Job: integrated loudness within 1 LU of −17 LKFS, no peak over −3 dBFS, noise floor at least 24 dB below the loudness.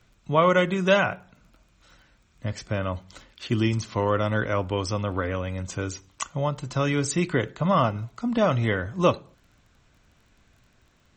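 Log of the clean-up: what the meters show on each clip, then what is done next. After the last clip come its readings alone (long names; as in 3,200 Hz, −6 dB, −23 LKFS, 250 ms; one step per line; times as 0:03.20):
crackle rate 24 per second; integrated loudness −25.5 LKFS; sample peak −6.5 dBFS; target loudness −17.0 LKFS
→ click removal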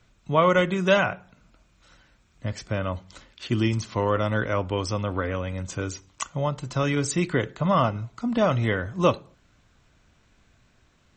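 crackle rate 0.18 per second; integrated loudness −25.5 LKFS; sample peak −6.5 dBFS; target loudness −17.0 LKFS
→ level +8.5 dB
brickwall limiter −3 dBFS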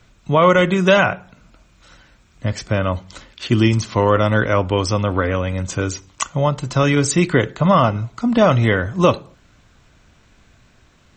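integrated loudness −17.5 LKFS; sample peak −3.0 dBFS; background noise floor −54 dBFS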